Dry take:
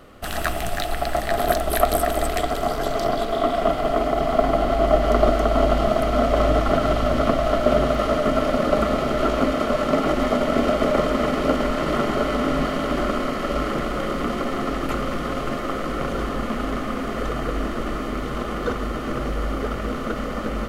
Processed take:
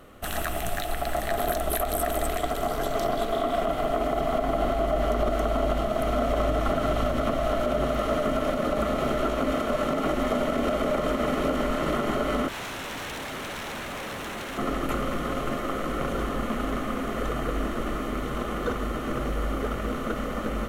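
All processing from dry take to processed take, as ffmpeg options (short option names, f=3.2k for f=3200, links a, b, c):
-filter_complex "[0:a]asettb=1/sr,asplit=3[a][b][c];[a]atrim=end=12.484[d];[b]atrim=start=12.48:end=14.58,asetpts=PTS-STARTPTS,afade=t=in:d=0.004:c=qsin,afade=t=out:st=2.096:d=0.004:c=qsin,highpass=68,bandreject=f=60:t=h:w=6,bandreject=f=120:t=h:w=6,bandreject=f=180:t=h:w=6,bandreject=f=240:t=h:w=6,bandreject=f=300:t=h:w=6,bandreject=f=360:t=h:w=6,bandreject=f=420:t=h:w=6,bandreject=f=480:t=h:w=6,aeval=exprs='0.0447*(abs(mod(val(0)/0.0447+3,4)-2)-1)':c=same[e];[c]atrim=start=14.576[f];[d][e]acrossfade=d=0.004:c1=hsin:c2=qsin[g];[g][f]acrossfade=d=0.004:c1=qsin:c2=hsin,equalizer=f=14k:t=o:w=1:g=5.5,alimiter=limit=-12.5dB:level=0:latency=1:release=81,equalizer=f=4.8k:t=o:w=0.22:g=-8,volume=-3dB"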